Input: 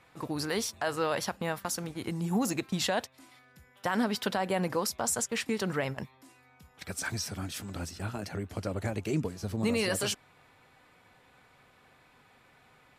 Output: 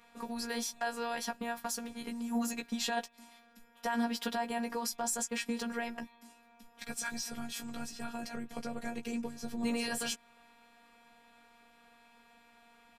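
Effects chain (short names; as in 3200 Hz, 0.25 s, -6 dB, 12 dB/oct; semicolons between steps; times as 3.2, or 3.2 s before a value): in parallel at +0.5 dB: compressor, threshold -38 dBFS, peak gain reduction 13.5 dB; on the sum: robotiser 235 Hz; doubler 14 ms -5 dB; gain -5.5 dB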